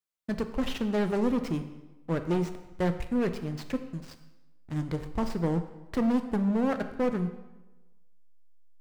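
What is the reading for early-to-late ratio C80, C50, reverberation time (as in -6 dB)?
12.5 dB, 10.5 dB, 1.1 s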